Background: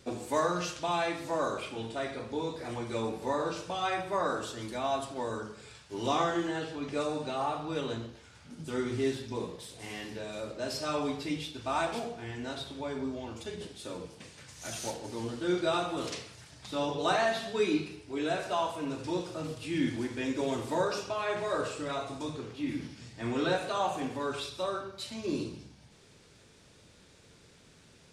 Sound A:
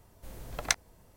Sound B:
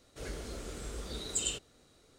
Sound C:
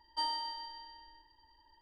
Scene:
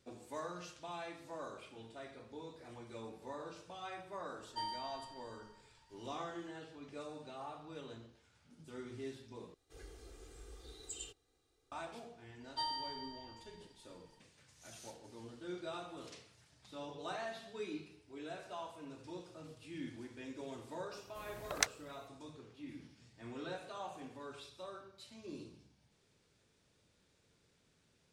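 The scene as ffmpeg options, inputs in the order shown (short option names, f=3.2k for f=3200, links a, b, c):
-filter_complex "[3:a]asplit=2[a][b];[0:a]volume=-15dB[c];[a]aecho=1:1:1.2:0.32[d];[2:a]aecho=1:1:2.5:0.77[e];[1:a]highpass=f=140:p=1[f];[c]asplit=2[g][h];[g]atrim=end=9.544[i];[e]atrim=end=2.18,asetpts=PTS-STARTPTS,volume=-16dB[j];[h]atrim=start=11.716[k];[d]atrim=end=1.81,asetpts=PTS-STARTPTS,volume=-7dB,afade=t=in:d=0.004:c=hsin,afade=t=out:st=1.806:d=0.004:c=hsin,adelay=4390[l];[b]atrim=end=1.81,asetpts=PTS-STARTPTS,volume=-4dB,afade=t=in:d=0.004:c=hsin,afade=t=out:st=1.806:d=0.004:c=hsin,adelay=12400[m];[f]atrim=end=1.16,asetpts=PTS-STARTPTS,volume=-5dB,afade=t=in:d=0.004:c=hsin,afade=t=out:st=1.156:d=0.004:c=hsin,adelay=20920[n];[i][j]acrossfade=d=0.004:c1=hsin:c2=hsin[o];[o][k]acrossfade=d=0.004:c1=hsin:c2=hsin[p];[p][l][m][n]amix=inputs=4:normalize=0"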